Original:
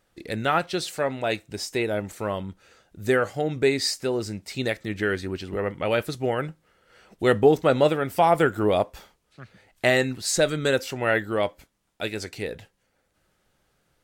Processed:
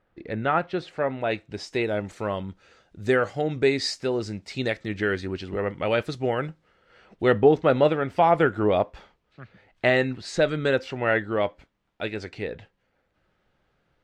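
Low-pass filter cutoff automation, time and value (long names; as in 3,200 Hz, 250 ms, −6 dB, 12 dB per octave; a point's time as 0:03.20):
0:01.00 2,000 Hz
0:01.89 5,400 Hz
0:06.47 5,400 Hz
0:07.28 3,200 Hz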